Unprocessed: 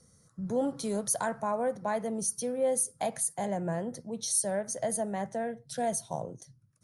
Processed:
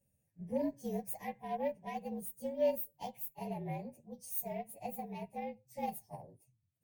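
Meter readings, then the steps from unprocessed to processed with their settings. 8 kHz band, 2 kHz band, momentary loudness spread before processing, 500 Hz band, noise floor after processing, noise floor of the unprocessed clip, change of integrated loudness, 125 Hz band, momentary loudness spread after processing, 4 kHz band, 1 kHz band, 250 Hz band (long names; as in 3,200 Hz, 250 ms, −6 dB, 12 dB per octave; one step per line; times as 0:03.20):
−21.0 dB, −11.0 dB, 9 LU, −7.0 dB, −80 dBFS, −64 dBFS, −8.0 dB, −7.0 dB, 14 LU, −14.5 dB, −7.0 dB, −7.0 dB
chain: partials spread apart or drawn together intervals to 114%
harmonic generator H 7 −31 dB, 8 −36 dB, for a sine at −19 dBFS
Butterworth band-reject 1,300 Hz, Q 1.4
expander for the loud parts 1.5 to 1, over −45 dBFS
level −1 dB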